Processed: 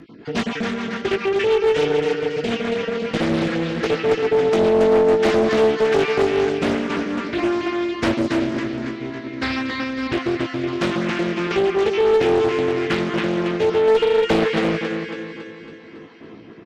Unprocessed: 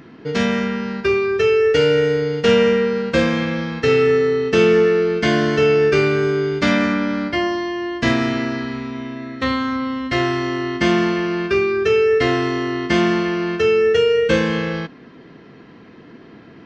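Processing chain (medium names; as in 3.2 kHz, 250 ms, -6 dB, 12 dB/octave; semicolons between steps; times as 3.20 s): random holes in the spectrogram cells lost 25%; peaking EQ 330 Hz +5 dB 0.31 oct; compression 12:1, threshold -15 dBFS, peak gain reduction 7 dB; rotary cabinet horn 7 Hz, later 0.6 Hz, at 4.98 s; doubling 18 ms -5 dB; thinning echo 277 ms, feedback 55%, high-pass 150 Hz, level -4.5 dB; one-sided clip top -12.5 dBFS; loudspeaker Doppler distortion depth 0.68 ms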